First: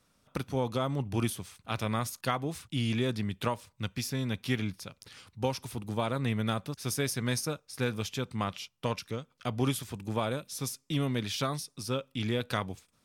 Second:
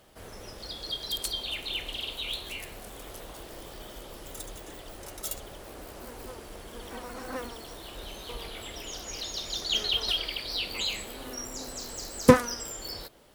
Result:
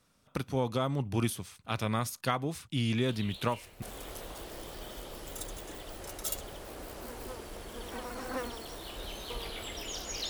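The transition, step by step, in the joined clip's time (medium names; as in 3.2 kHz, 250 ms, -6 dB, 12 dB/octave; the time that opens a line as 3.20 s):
first
3.08 s: add second from 2.07 s 0.74 s -12 dB
3.82 s: go over to second from 2.81 s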